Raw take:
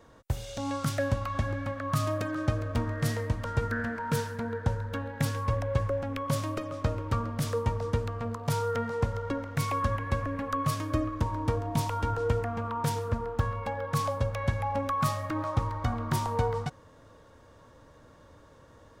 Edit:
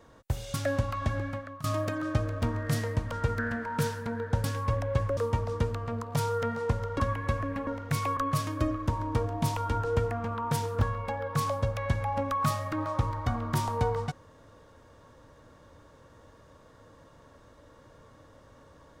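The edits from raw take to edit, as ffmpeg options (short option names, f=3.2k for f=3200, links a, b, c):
-filter_complex "[0:a]asplit=9[a][b][c][d][e][f][g][h][i];[a]atrim=end=0.542[j];[b]atrim=start=0.868:end=1.97,asetpts=PTS-STARTPTS,afade=t=out:st=0.712:d=0.39:silence=0.0841395[k];[c]atrim=start=1.97:end=4.772,asetpts=PTS-STARTPTS,afade=t=in:d=0.004:c=hsin:silence=0.0841395[l];[d]atrim=start=5.238:end=5.972[m];[e]atrim=start=7.498:end=9.332[n];[f]atrim=start=9.828:end=10.502[o];[g]atrim=start=9.328:end=9.832[p];[h]atrim=start=10.498:end=13.142[q];[i]atrim=start=13.388[r];[k][l]concat=n=2:v=0:a=1[s];[j][s]acrossfade=d=0.004:c1=hsin:c2=hsin[t];[t][m]acrossfade=d=0.004:c1=hsin:c2=hsin[u];[u][n]acrossfade=d=0.004:c1=hsin:c2=hsin[v];[v][o]acrossfade=d=0.004:c1=hsin:c2=hsin[w];[w][p]acrossfade=d=0.004:c1=hsin:c2=hsin[x];[x][q]acrossfade=d=0.004:c1=hsin:c2=hsin[y];[y][r]acrossfade=d=0.004:c1=hsin:c2=hsin"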